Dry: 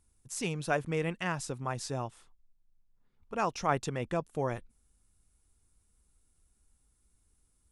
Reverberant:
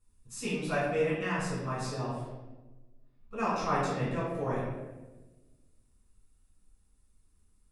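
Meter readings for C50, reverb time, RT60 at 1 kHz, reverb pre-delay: -0.5 dB, 1.2 s, 1.0 s, 6 ms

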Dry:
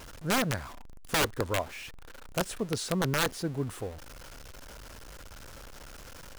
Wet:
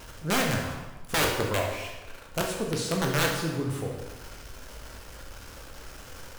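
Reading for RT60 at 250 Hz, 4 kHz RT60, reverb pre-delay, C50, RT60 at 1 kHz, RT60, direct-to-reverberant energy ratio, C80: 1.1 s, 1.0 s, 9 ms, 3.5 dB, 1.2 s, 1.2 s, -0.5 dB, 6.0 dB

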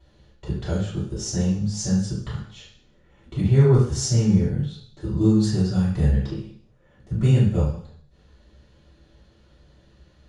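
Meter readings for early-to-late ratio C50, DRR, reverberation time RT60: 3.0 dB, -9.5 dB, 0.60 s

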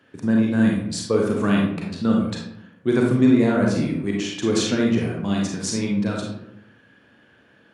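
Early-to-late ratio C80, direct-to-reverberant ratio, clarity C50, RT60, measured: 6.0 dB, -1.5 dB, 2.0 dB, 0.80 s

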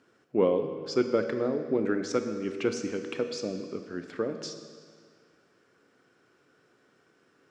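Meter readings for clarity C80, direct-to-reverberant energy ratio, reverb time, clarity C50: 9.0 dB, 6.0 dB, 1.9 s, 7.5 dB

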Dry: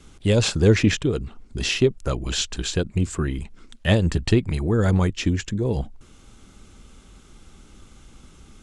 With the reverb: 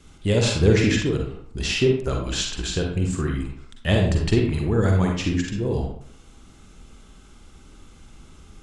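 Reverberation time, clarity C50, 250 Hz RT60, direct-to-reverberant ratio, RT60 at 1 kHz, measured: 0.65 s, 2.0 dB, 0.70 s, 0.0 dB, 0.65 s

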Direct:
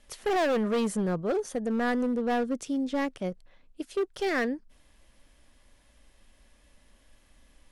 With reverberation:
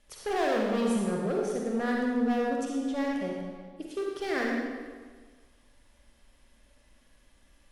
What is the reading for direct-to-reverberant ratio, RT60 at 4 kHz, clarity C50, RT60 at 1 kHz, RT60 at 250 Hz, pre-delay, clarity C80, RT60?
-2.0 dB, 1.2 s, -1.0 dB, 1.5 s, 1.5 s, 40 ms, 1.5 dB, 1.5 s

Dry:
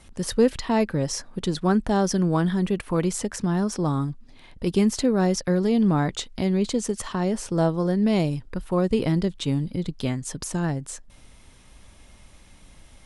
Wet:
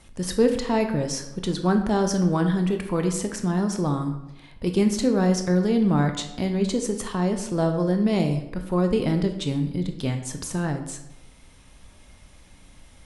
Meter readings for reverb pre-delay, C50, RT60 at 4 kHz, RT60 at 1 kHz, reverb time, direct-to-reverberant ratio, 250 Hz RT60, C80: 17 ms, 8.5 dB, 0.60 s, 0.90 s, 0.90 s, 5.5 dB, 0.95 s, 11.0 dB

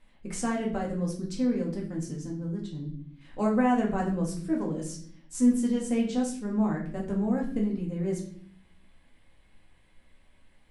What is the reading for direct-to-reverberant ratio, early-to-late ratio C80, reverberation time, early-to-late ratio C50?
-2.5 dB, 11.5 dB, 0.55 s, 7.5 dB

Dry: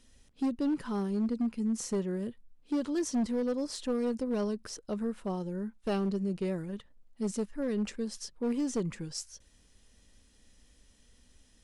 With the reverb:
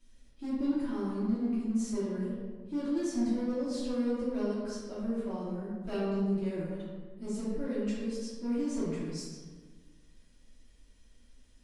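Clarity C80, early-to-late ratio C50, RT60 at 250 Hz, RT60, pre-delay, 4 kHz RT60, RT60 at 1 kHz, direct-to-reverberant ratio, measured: 1.0 dB, -1.0 dB, 1.9 s, 1.5 s, 3 ms, 0.90 s, 1.4 s, -12.5 dB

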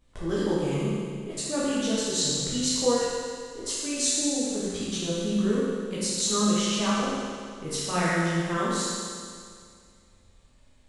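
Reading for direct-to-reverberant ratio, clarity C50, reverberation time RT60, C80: -9.5 dB, -3.5 dB, 2.1 s, -1.5 dB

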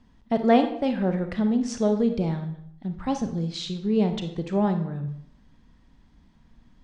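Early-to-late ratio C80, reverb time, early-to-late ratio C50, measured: 12.0 dB, 0.65 s, 9.0 dB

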